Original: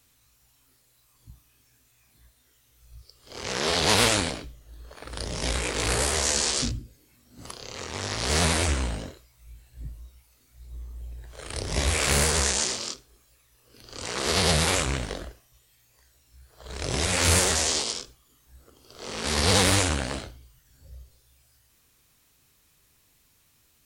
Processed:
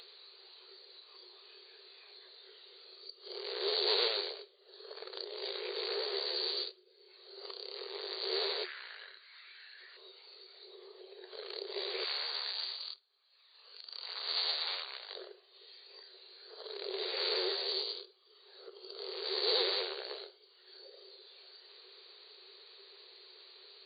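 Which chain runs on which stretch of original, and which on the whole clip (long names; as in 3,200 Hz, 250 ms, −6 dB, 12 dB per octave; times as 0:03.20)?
0:08.64–0:09.97: high-pass with resonance 1,700 Hz, resonance Q 3.6 + parametric band 13,000 Hz −11 dB 2.8 octaves + upward compression, threshold −51 dBFS
0:12.04–0:15.16: mu-law and A-law mismatch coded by A + high-pass filter 720 Hz 24 dB per octave
whole clip: flat-topped bell 1,300 Hz −15.5 dB 2.9 octaves; brick-wall band-pass 360–4,700 Hz; upward compression, threshold −37 dBFS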